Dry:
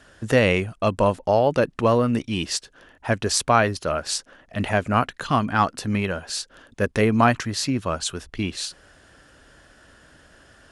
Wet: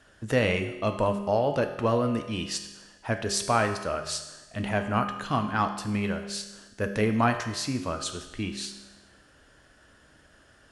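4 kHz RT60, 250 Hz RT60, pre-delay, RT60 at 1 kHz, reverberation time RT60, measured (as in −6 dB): 1.1 s, 1.2 s, 5 ms, 1.1 s, 1.1 s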